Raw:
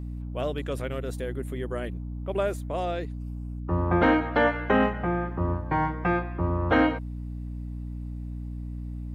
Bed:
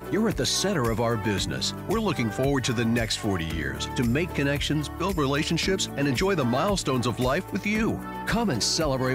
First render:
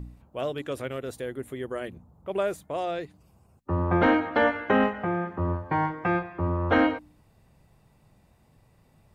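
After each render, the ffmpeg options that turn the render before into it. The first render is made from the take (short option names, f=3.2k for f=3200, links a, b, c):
-af "bandreject=f=60:t=h:w=4,bandreject=f=120:t=h:w=4,bandreject=f=180:t=h:w=4,bandreject=f=240:t=h:w=4,bandreject=f=300:t=h:w=4"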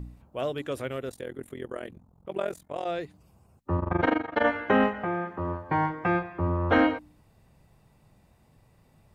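-filter_complex "[0:a]asettb=1/sr,asplit=3[a][b][c];[a]atrim=end=1.094[d];[b]atrim=start=1.09:end=2.86,asetpts=PTS-STARTPTS,afade=t=in:d=0.004:c=qsin,afade=t=out:st=1.766:d=0.004:c=qsin,tremolo=f=43:d=0.919[e];[c]atrim=start=2.856[f];[d][e]acrossfade=d=0.004:c1=hsin:c2=qsin[g];[g][f]acrossfade=d=0.004:c1=qsin:c2=hsin,asplit=3[h][i][j];[h]afade=t=out:st=3.77:d=0.02[k];[i]tremolo=f=24:d=0.919,afade=t=in:st=3.77:d=0.02,afade=t=out:st=4.43:d=0.02[l];[j]afade=t=in:st=4.43:d=0.02[m];[k][l][m]amix=inputs=3:normalize=0,asettb=1/sr,asplit=3[n][o][p];[n]atrim=end=5.044[q];[o]atrim=start=5.04:end=5.69,asetpts=PTS-STARTPTS,afade=t=in:d=0.004:c=qsin,afade=t=out:st=0.646:d=0.004:c=qsin,lowshelf=f=210:g=-8[r];[p]atrim=start=5.686[s];[q][r]acrossfade=d=0.004:c1=hsin:c2=qsin[t];[t][s]acrossfade=d=0.004:c1=qsin:c2=hsin"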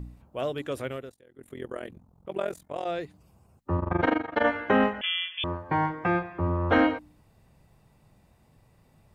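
-filter_complex "[0:a]asettb=1/sr,asplit=3[a][b][c];[a]atrim=end=5.014[d];[b]atrim=start=5.01:end=5.44,asetpts=PTS-STARTPTS,afade=t=in:d=0.004:c=qsin,afade=t=out:st=0.426:d=0.004:c=qsin,lowpass=f=3.1k:t=q:w=0.5098,lowpass=f=3.1k:t=q:w=0.6013,lowpass=f=3.1k:t=q:w=0.9,lowpass=f=3.1k:t=q:w=2.563,afreqshift=-3600[e];[c]atrim=start=5.436[f];[d][e]acrossfade=d=0.004:c1=hsin:c2=qsin[g];[g][f]acrossfade=d=0.004:c1=qsin:c2=hsin,asplit=3[h][i][j];[h]atrim=end=1.16,asetpts=PTS-STARTPTS,afade=t=out:st=0.9:d=0.26:silence=0.1[k];[i]atrim=start=1.16:end=1.33,asetpts=PTS-STARTPTS,volume=-20dB[l];[j]atrim=start=1.33,asetpts=PTS-STARTPTS,afade=t=in:d=0.26:silence=0.1[m];[k][l][m]concat=n=3:v=0:a=1"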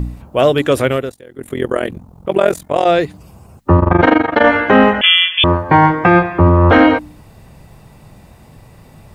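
-af "acontrast=78,alimiter=level_in=12dB:limit=-1dB:release=50:level=0:latency=1"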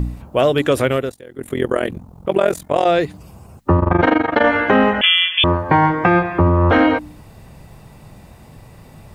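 -af "acompressor=threshold=-13dB:ratio=2"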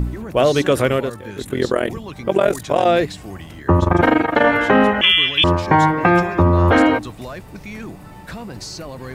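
-filter_complex "[1:a]volume=-8dB[a];[0:a][a]amix=inputs=2:normalize=0"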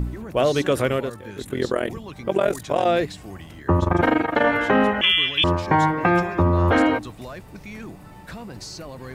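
-af "volume=-4.5dB"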